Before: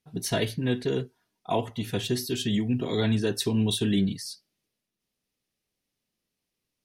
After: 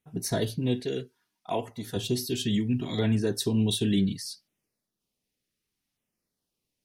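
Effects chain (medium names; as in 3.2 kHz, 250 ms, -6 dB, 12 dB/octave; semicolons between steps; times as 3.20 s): 0.80–1.96 s: bass shelf 250 Hz -9 dB; LFO notch saw down 0.67 Hz 390–5000 Hz; dynamic bell 1.2 kHz, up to -4 dB, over -45 dBFS, Q 1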